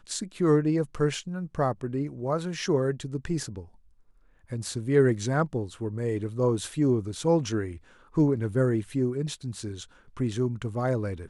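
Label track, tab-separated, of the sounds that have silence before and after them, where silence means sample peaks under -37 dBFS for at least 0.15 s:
4.510000	7.770000	sound
8.170000	9.840000	sound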